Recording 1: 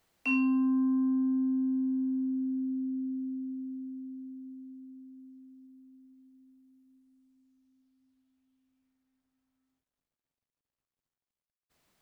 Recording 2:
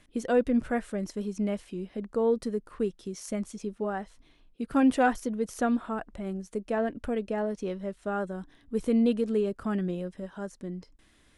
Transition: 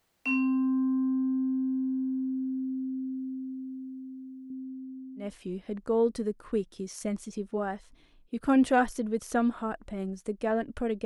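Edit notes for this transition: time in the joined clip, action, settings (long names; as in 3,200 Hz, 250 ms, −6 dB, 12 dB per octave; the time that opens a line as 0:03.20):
recording 1
0:04.50–0:05.34: tilt shelving filter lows +7.5 dB, about 1,300 Hz
0:05.25: continue with recording 2 from 0:01.52, crossfade 0.18 s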